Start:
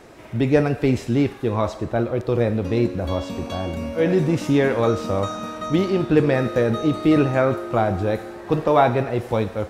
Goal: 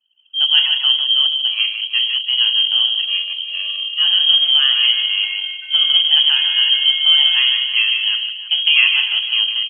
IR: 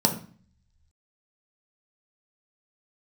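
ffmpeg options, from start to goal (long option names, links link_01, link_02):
-filter_complex "[0:a]asettb=1/sr,asplit=3[link_01][link_02][link_03];[link_01]atrim=end=3.994[link_04];[link_02]atrim=start=3.99:end=4.93,asetpts=PTS-STARTPTS,afade=type=in:duration=0.004:curve=qsin,afade=type=out:start_time=0.936:duration=0.004:curve=qsin,afreqshift=14[link_05];[link_03]atrim=start=4.926[link_06];[link_04][link_05]acrossfade=duration=0.004:curve1=hsin:curve2=qsin[link_07];[link_07][link_06]acrossfade=duration=0.004:curve1=qsin:curve2=hsin,aecho=1:1:153:0.473,asplit=2[link_08][link_09];[1:a]atrim=start_sample=2205,afade=type=out:start_time=0.28:duration=0.01,atrim=end_sample=12789[link_10];[link_09][link_10]afir=irnorm=-1:irlink=0,volume=-12.5dB[link_11];[link_08][link_11]amix=inputs=2:normalize=0,lowpass=frequency=2900:width_type=q:width=0.5098,lowpass=frequency=2900:width_type=q:width=0.6013,lowpass=frequency=2900:width_type=q:width=0.9,lowpass=frequency=2900:width_type=q:width=2.563,afreqshift=-3400,anlmdn=1580,highpass=230,asplit=2[link_12][link_13];[link_13]aecho=0:1:326:0.2[link_14];[link_12][link_14]amix=inputs=2:normalize=0,volume=-5dB"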